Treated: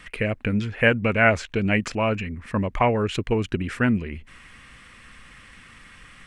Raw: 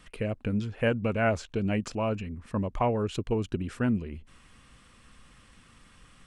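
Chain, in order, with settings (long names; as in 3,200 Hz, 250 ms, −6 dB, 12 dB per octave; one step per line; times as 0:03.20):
parametric band 2,000 Hz +11 dB 0.98 octaves
level +5 dB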